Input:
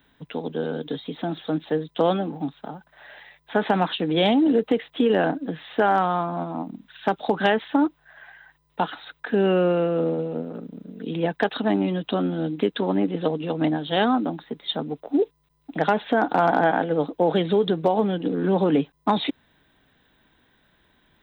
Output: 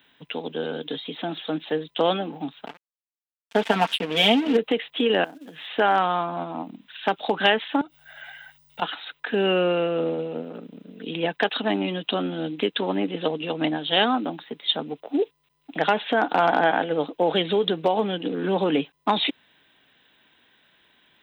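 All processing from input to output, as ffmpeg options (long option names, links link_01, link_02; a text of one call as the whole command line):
ffmpeg -i in.wav -filter_complex "[0:a]asettb=1/sr,asplit=3[link_01][link_02][link_03];[link_01]atrim=end=2.664[link_04];[link_02]atrim=start=2.66:end=4.57,asetpts=PTS-STARTPTS,afade=type=in:duration=0.004:curve=qsin,afade=type=out:start_time=1.906:duration=0.004:curve=qsin,aecho=1:1:4.4:0.78,atrim=end_sample=84231,aeval=exprs='sgn(val(0))*max(abs(val(0))-0.0251,0)':channel_layout=same[link_05];[link_03]atrim=start=4.566[link_06];[link_04][link_05]acrossfade=duration=0.004:curve1=hsin:curve2=qsin[link_07];[link_07][link_06]acrossfade=duration=0.004:curve1=qsin:curve2=hsin,asettb=1/sr,asplit=3[link_08][link_09][link_10];[link_08]atrim=end=5.244[link_11];[link_09]atrim=start=5.24:end=5.67,asetpts=PTS-STARTPTS,afade=type=in:duration=0.004:curve=qsin,afade=type=out:start_time=0.426:duration=0.004:curve=qsin,highpass=94,acrusher=bits=6:mode=log:mix=0:aa=0.000001,acompressor=threshold=-35dB:ratio=20:attack=3.2:release=140:knee=1:detection=peak[link_12];[link_10]atrim=start=5.666[link_13];[link_11][link_12]acrossfade=duration=0.004:curve1=hsin:curve2=qsin[link_14];[link_14][link_13]acrossfade=duration=0.004:curve1=qsin:curve2=hsin,asettb=1/sr,asplit=3[link_15][link_16][link_17];[link_15]atrim=end=7.814[link_18];[link_16]atrim=start=7.81:end=8.82,asetpts=PTS-STARTPTS,afade=type=in:duration=0.004:curve=qsin,afade=type=out:start_time=1.006:duration=0.004:curve=qsin,acompressor=threshold=-35dB:ratio=8:attack=3.2:release=140:knee=1:detection=peak,bass=frequency=250:gain=9,treble=frequency=4000:gain=13,aecho=1:1:1.4:0.61,atrim=end_sample=44541[link_19];[link_17]atrim=start=8.816[link_20];[link_18][link_19]acrossfade=duration=0.004:curve1=hsin:curve2=qsin[link_21];[link_21][link_20]acrossfade=duration=0.004:curve1=qsin:curve2=hsin,highpass=frequency=290:poles=1,equalizer=frequency=2800:width=1.6:gain=9" out.wav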